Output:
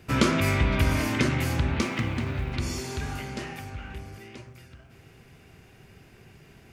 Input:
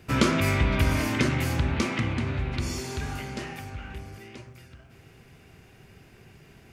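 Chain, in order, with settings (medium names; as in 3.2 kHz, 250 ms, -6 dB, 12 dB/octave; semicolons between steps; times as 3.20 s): 1.81–2.54 s: companding laws mixed up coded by A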